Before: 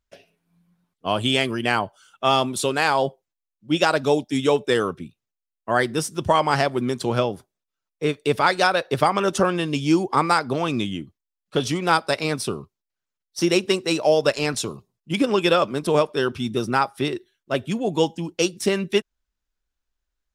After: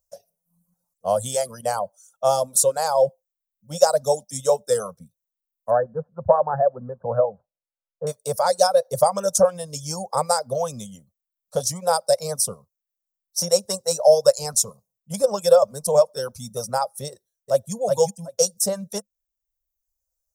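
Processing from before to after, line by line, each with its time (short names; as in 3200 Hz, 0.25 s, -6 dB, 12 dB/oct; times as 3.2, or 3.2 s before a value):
5.7–8.07 brick-wall FIR low-pass 1800 Hz
17.11–17.73 echo throw 0.37 s, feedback 20%, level -2.5 dB
whole clip: high shelf 10000 Hz +10.5 dB; reverb removal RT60 0.99 s; EQ curve 200 Hz 0 dB, 340 Hz -25 dB, 520 Hz +13 dB, 2700 Hz -20 dB, 5900 Hz +11 dB; gain -4 dB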